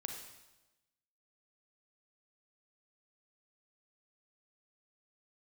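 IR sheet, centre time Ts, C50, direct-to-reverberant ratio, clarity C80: 38 ms, 4.0 dB, 2.5 dB, 6.5 dB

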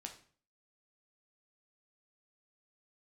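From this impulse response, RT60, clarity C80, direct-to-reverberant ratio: 0.45 s, 14.5 dB, 3.0 dB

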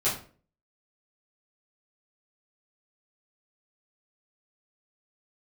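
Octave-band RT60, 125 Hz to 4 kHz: 0.55 s, 0.50 s, 0.45 s, 0.35 s, 0.35 s, 0.30 s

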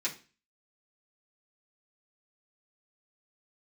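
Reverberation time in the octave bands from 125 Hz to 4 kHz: 0.45 s, 0.40 s, 0.35 s, 0.35 s, 0.35 s, 0.35 s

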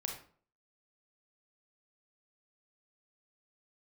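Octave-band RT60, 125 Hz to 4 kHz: 0.55 s, 0.50 s, 0.50 s, 0.45 s, 0.35 s, 0.30 s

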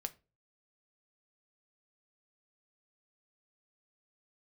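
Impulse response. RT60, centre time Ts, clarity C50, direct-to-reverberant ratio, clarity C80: no single decay rate, 3 ms, 20.0 dB, 8.5 dB, 26.5 dB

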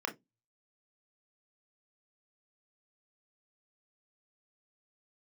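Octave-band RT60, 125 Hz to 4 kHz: 0.55 s, 0.25 s, 0.20 s, 0.15 s, 0.15 s, 0.15 s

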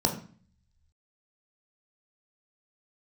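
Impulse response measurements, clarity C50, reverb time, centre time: 9.5 dB, 0.45 s, 18 ms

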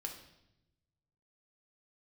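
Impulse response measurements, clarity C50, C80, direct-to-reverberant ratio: 7.5 dB, 10.5 dB, 1.5 dB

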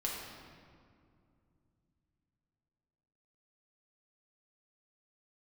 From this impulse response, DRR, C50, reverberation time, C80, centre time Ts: -4.0 dB, 0.5 dB, 2.4 s, 2.5 dB, 90 ms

